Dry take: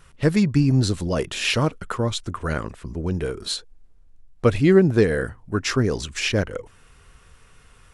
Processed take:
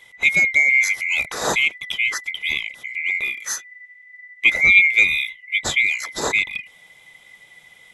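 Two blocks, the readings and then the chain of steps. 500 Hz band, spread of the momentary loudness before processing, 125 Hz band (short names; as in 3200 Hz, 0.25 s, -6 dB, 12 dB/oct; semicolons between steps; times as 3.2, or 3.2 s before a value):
-12.0 dB, 13 LU, -21.5 dB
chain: band-swap scrambler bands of 2000 Hz; gain +1.5 dB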